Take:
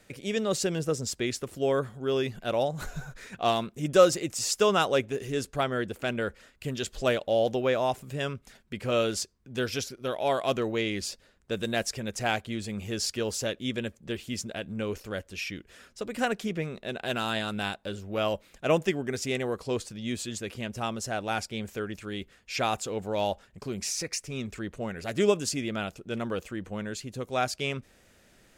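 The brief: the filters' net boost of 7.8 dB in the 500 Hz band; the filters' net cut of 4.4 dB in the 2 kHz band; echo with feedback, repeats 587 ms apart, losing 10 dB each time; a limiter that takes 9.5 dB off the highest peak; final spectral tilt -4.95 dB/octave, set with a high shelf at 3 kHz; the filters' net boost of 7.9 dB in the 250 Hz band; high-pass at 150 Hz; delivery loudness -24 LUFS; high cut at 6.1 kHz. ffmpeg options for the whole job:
-af "highpass=150,lowpass=6100,equalizer=f=250:t=o:g=8.5,equalizer=f=500:t=o:g=7.5,equalizer=f=2000:t=o:g=-8.5,highshelf=f=3000:g=3.5,alimiter=limit=0.266:level=0:latency=1,aecho=1:1:587|1174|1761|2348:0.316|0.101|0.0324|0.0104,volume=1.12"

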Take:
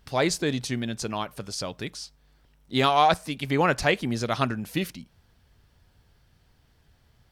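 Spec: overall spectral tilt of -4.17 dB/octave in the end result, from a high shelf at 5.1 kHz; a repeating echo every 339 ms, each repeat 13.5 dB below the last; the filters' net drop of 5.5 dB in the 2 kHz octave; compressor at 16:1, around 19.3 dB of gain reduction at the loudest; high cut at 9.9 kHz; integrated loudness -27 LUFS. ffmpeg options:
-af "lowpass=9900,equalizer=f=2000:t=o:g=-8,highshelf=f=5100:g=5,acompressor=threshold=0.0158:ratio=16,aecho=1:1:339|678:0.211|0.0444,volume=5.01"

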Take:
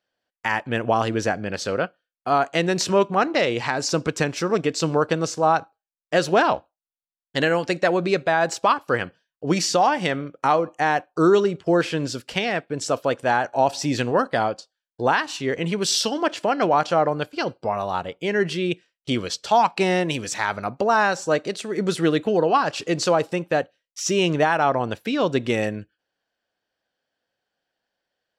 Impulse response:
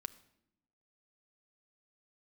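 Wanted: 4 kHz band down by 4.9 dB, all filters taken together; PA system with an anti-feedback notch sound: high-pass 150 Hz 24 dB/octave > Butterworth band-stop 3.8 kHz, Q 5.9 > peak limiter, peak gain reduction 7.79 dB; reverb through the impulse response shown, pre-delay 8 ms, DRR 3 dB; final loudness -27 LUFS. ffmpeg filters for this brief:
-filter_complex "[0:a]equalizer=f=4000:t=o:g=-6,asplit=2[s0][s1];[1:a]atrim=start_sample=2205,adelay=8[s2];[s1][s2]afir=irnorm=-1:irlink=0,volume=1[s3];[s0][s3]amix=inputs=2:normalize=0,highpass=f=150:w=0.5412,highpass=f=150:w=1.3066,asuperstop=centerf=3800:order=8:qfactor=5.9,volume=0.631,alimiter=limit=0.178:level=0:latency=1"

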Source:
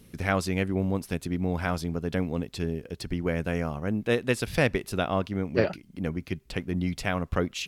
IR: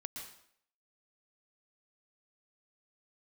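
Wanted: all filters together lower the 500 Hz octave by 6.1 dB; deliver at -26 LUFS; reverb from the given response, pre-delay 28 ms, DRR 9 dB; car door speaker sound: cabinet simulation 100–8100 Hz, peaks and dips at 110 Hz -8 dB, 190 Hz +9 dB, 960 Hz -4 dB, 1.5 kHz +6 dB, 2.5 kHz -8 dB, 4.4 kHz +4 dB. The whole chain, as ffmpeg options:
-filter_complex "[0:a]equalizer=f=500:t=o:g=-7.5,asplit=2[s0][s1];[1:a]atrim=start_sample=2205,adelay=28[s2];[s1][s2]afir=irnorm=-1:irlink=0,volume=0.447[s3];[s0][s3]amix=inputs=2:normalize=0,highpass=100,equalizer=f=110:t=q:w=4:g=-8,equalizer=f=190:t=q:w=4:g=9,equalizer=f=960:t=q:w=4:g=-4,equalizer=f=1500:t=q:w=4:g=6,equalizer=f=2500:t=q:w=4:g=-8,equalizer=f=4400:t=q:w=4:g=4,lowpass=f=8100:w=0.5412,lowpass=f=8100:w=1.3066,volume=1.19"

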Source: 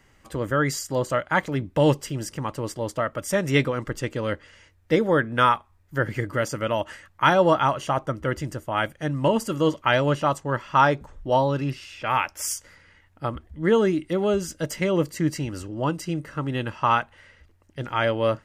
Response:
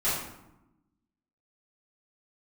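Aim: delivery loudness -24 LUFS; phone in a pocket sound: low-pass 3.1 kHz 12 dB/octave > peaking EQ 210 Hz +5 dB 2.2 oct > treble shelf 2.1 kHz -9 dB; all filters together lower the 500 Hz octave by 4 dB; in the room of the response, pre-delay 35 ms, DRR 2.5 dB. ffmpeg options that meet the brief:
-filter_complex "[0:a]equalizer=f=500:t=o:g=-7,asplit=2[s0][s1];[1:a]atrim=start_sample=2205,adelay=35[s2];[s1][s2]afir=irnorm=-1:irlink=0,volume=0.211[s3];[s0][s3]amix=inputs=2:normalize=0,lowpass=3100,equalizer=f=210:t=o:w=2.2:g=5,highshelf=f=2100:g=-9,volume=0.891"

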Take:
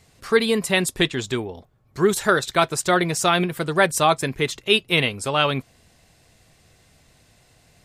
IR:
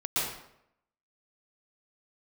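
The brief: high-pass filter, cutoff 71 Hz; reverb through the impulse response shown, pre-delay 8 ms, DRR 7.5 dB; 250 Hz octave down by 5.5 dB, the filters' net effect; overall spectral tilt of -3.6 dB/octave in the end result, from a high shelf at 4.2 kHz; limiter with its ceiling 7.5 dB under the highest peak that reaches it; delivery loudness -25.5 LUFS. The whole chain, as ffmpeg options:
-filter_complex "[0:a]highpass=71,equalizer=f=250:t=o:g=-9,highshelf=f=4200:g=-6,alimiter=limit=0.251:level=0:latency=1,asplit=2[s0][s1];[1:a]atrim=start_sample=2205,adelay=8[s2];[s1][s2]afir=irnorm=-1:irlink=0,volume=0.15[s3];[s0][s3]amix=inputs=2:normalize=0,volume=0.944"

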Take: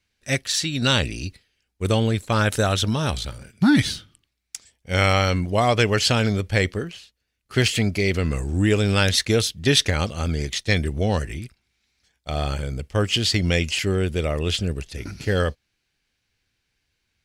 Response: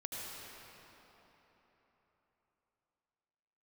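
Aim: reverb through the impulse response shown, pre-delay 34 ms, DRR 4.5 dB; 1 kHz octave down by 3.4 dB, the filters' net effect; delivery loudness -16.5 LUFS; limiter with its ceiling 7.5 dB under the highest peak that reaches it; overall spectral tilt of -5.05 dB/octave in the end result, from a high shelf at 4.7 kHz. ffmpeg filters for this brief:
-filter_complex "[0:a]equalizer=f=1000:t=o:g=-4.5,highshelf=f=4700:g=-9,alimiter=limit=0.2:level=0:latency=1,asplit=2[s0][s1];[1:a]atrim=start_sample=2205,adelay=34[s2];[s1][s2]afir=irnorm=-1:irlink=0,volume=0.531[s3];[s0][s3]amix=inputs=2:normalize=0,volume=2.51"

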